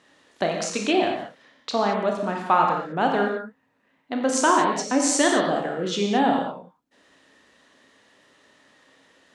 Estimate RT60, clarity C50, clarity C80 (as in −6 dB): non-exponential decay, 3.0 dB, 5.0 dB